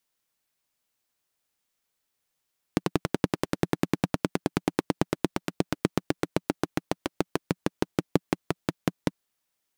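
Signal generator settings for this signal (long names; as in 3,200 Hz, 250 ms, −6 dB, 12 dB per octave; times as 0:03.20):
pulse-train model of a single-cylinder engine, changing speed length 6.34 s, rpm 1,300, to 600, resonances 180/290 Hz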